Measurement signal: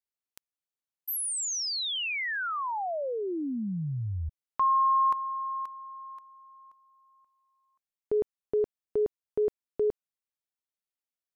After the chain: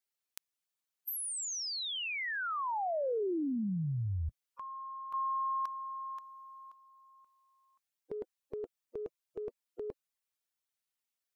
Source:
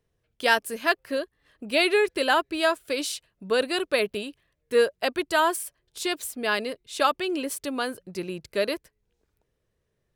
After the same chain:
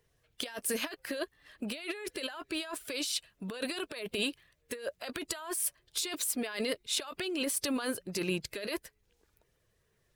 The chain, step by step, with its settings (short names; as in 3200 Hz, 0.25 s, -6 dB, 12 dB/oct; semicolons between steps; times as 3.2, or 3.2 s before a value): bin magnitudes rounded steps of 15 dB; tilt shelf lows -3.5 dB; negative-ratio compressor -34 dBFS, ratio -1; gain -2.5 dB